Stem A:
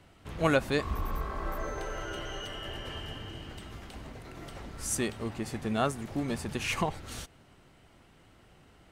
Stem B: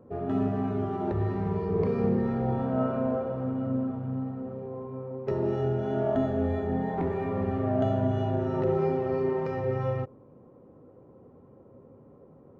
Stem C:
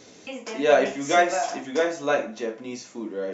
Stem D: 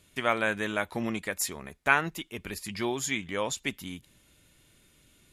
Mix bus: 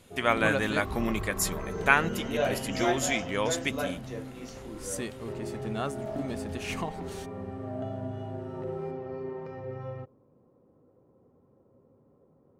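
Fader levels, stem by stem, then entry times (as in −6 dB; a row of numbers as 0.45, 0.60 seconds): −4.5, −9.5, −10.5, +1.5 decibels; 0.00, 0.00, 1.70, 0.00 seconds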